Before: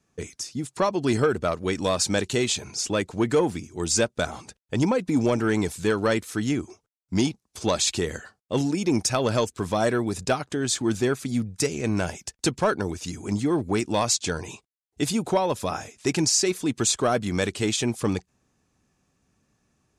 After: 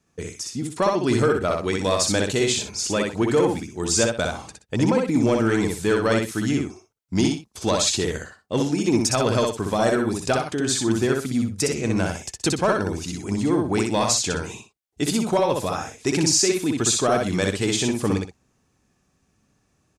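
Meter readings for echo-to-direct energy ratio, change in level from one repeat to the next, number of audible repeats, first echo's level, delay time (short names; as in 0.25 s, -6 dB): -2.5 dB, -11.5 dB, 2, -3.0 dB, 62 ms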